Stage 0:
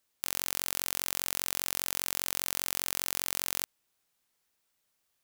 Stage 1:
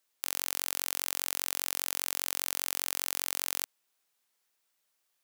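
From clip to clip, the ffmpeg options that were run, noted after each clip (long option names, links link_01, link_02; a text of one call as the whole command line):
ffmpeg -i in.wav -af "highpass=frequency=400:poles=1" out.wav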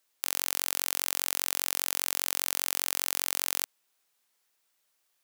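ffmpeg -i in.wav -af "lowshelf=frequency=180:gain=-2.5,volume=3dB" out.wav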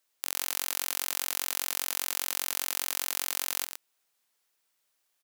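ffmpeg -i in.wav -af "aecho=1:1:115:0.376,volume=-2dB" out.wav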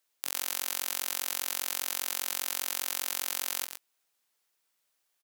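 ffmpeg -i in.wav -filter_complex "[0:a]asplit=2[link_01][link_02];[link_02]adelay=17,volume=-13dB[link_03];[link_01][link_03]amix=inputs=2:normalize=0,volume=-1.5dB" out.wav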